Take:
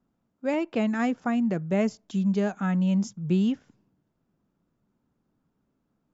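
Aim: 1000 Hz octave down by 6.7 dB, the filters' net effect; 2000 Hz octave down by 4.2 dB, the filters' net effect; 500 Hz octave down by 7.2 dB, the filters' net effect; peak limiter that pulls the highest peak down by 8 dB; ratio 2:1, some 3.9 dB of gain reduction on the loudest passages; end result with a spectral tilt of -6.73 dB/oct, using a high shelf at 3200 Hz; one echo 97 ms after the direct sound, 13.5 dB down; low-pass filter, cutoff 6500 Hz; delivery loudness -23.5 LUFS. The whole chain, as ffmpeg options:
-af "lowpass=6.5k,equalizer=f=500:t=o:g=-8,equalizer=f=1k:t=o:g=-5.5,equalizer=f=2k:t=o:g=-6,highshelf=f=3.2k:g=8.5,acompressor=threshold=-29dB:ratio=2,alimiter=level_in=3.5dB:limit=-24dB:level=0:latency=1,volume=-3.5dB,aecho=1:1:97:0.211,volume=11dB"

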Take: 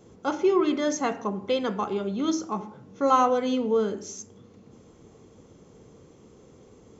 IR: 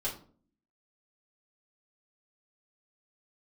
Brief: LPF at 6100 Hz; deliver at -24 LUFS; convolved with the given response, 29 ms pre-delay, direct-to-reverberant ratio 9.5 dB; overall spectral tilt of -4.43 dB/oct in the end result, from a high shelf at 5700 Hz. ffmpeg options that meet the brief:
-filter_complex "[0:a]lowpass=6.1k,highshelf=f=5.7k:g=7,asplit=2[a][b];[1:a]atrim=start_sample=2205,adelay=29[c];[b][c]afir=irnorm=-1:irlink=0,volume=-13.5dB[d];[a][d]amix=inputs=2:normalize=0,volume=1dB"

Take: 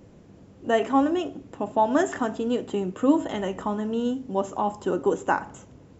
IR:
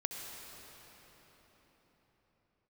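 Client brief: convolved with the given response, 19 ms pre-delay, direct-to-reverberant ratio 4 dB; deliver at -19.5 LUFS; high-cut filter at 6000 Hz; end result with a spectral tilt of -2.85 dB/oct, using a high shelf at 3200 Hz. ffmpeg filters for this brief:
-filter_complex "[0:a]lowpass=6k,highshelf=f=3.2k:g=-6.5,asplit=2[a][b];[1:a]atrim=start_sample=2205,adelay=19[c];[b][c]afir=irnorm=-1:irlink=0,volume=-5.5dB[d];[a][d]amix=inputs=2:normalize=0,volume=5.5dB"

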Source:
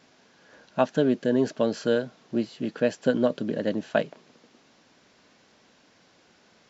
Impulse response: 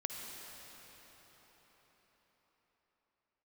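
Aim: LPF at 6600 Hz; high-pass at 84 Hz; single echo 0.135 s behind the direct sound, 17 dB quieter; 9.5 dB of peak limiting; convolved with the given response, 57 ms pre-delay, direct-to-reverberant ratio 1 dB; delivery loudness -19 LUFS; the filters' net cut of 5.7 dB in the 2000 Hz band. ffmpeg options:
-filter_complex "[0:a]highpass=84,lowpass=6.6k,equalizer=f=2k:t=o:g=-8.5,alimiter=limit=-19dB:level=0:latency=1,aecho=1:1:135:0.141,asplit=2[a][b];[1:a]atrim=start_sample=2205,adelay=57[c];[b][c]afir=irnorm=-1:irlink=0,volume=-2dB[d];[a][d]amix=inputs=2:normalize=0,volume=10dB"

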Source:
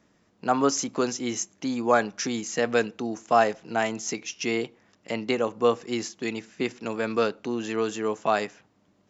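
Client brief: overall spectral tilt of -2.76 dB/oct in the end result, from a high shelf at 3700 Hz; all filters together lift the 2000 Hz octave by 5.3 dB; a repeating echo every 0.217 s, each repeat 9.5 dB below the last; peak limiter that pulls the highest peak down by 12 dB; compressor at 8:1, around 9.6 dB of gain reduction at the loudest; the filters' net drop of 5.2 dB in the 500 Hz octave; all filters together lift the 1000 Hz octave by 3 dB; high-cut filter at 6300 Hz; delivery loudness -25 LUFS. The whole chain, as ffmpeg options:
-af "lowpass=6.3k,equalizer=f=500:t=o:g=-9,equalizer=f=1k:t=o:g=6,equalizer=f=2k:t=o:g=4.5,highshelf=f=3.7k:g=3.5,acompressor=threshold=-23dB:ratio=8,alimiter=limit=-22dB:level=0:latency=1,aecho=1:1:217|434|651|868:0.335|0.111|0.0365|0.012,volume=8.5dB"

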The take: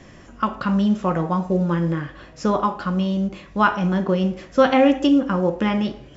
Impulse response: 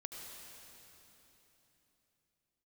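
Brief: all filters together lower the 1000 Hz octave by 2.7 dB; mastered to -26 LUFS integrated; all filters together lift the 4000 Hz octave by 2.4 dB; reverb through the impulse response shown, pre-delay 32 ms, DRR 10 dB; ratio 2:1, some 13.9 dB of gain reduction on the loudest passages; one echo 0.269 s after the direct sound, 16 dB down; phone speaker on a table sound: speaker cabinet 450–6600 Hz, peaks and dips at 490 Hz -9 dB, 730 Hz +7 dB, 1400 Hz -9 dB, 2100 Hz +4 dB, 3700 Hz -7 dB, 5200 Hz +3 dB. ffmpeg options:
-filter_complex "[0:a]equalizer=f=1k:t=o:g=-5,equalizer=f=4k:t=o:g=7,acompressor=threshold=-38dB:ratio=2,aecho=1:1:269:0.158,asplit=2[a][b];[1:a]atrim=start_sample=2205,adelay=32[c];[b][c]afir=irnorm=-1:irlink=0,volume=-7.5dB[d];[a][d]amix=inputs=2:normalize=0,highpass=f=450:w=0.5412,highpass=f=450:w=1.3066,equalizer=f=490:t=q:w=4:g=-9,equalizer=f=730:t=q:w=4:g=7,equalizer=f=1.4k:t=q:w=4:g=-9,equalizer=f=2.1k:t=q:w=4:g=4,equalizer=f=3.7k:t=q:w=4:g=-7,equalizer=f=5.2k:t=q:w=4:g=3,lowpass=f=6.6k:w=0.5412,lowpass=f=6.6k:w=1.3066,volume=13.5dB"

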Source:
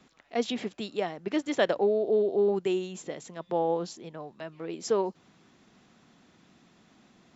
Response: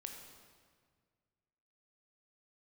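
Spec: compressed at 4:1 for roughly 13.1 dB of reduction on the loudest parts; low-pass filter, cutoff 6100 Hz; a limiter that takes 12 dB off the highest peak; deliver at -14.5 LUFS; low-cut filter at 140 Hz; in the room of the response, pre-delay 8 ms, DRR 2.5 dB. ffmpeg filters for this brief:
-filter_complex "[0:a]highpass=140,lowpass=6.1k,acompressor=threshold=-37dB:ratio=4,alimiter=level_in=11dB:limit=-24dB:level=0:latency=1,volume=-11dB,asplit=2[a][b];[1:a]atrim=start_sample=2205,adelay=8[c];[b][c]afir=irnorm=-1:irlink=0,volume=1dB[d];[a][d]amix=inputs=2:normalize=0,volume=28dB"

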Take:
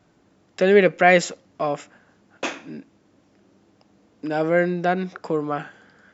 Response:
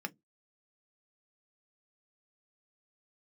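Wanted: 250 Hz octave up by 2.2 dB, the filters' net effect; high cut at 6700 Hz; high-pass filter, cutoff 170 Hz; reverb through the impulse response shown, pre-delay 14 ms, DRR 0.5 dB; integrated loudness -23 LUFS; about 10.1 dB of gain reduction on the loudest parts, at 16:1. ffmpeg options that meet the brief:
-filter_complex "[0:a]highpass=170,lowpass=6.7k,equalizer=f=250:t=o:g=5.5,acompressor=threshold=-18dB:ratio=16,asplit=2[a][b];[1:a]atrim=start_sample=2205,adelay=14[c];[b][c]afir=irnorm=-1:irlink=0,volume=-1.5dB[d];[a][d]amix=inputs=2:normalize=0,volume=1dB"

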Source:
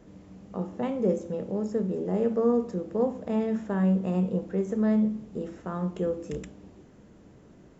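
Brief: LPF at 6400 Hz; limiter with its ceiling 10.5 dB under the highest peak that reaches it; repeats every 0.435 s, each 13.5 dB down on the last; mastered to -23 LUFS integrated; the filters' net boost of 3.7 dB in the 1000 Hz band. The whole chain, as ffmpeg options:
-af "lowpass=6.4k,equalizer=f=1k:t=o:g=5,alimiter=limit=-22.5dB:level=0:latency=1,aecho=1:1:435|870:0.211|0.0444,volume=8.5dB"

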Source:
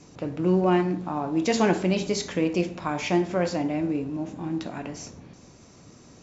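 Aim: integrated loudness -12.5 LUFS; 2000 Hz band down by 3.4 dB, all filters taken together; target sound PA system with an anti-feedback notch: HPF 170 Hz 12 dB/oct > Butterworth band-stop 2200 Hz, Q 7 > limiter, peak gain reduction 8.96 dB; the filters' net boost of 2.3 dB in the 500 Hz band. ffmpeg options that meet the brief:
-af "highpass=170,asuperstop=centerf=2200:order=8:qfactor=7,equalizer=f=500:t=o:g=3.5,equalizer=f=2k:t=o:g=-3.5,volume=15.5dB,alimiter=limit=-1.5dB:level=0:latency=1"

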